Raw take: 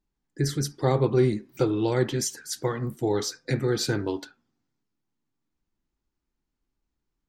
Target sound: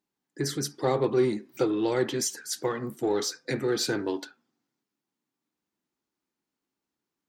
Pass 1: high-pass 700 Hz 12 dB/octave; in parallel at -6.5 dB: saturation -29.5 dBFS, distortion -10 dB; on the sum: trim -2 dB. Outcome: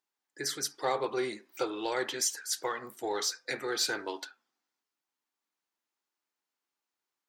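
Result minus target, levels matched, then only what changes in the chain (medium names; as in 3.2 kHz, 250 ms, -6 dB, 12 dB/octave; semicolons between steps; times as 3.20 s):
250 Hz band -7.0 dB
change: high-pass 220 Hz 12 dB/octave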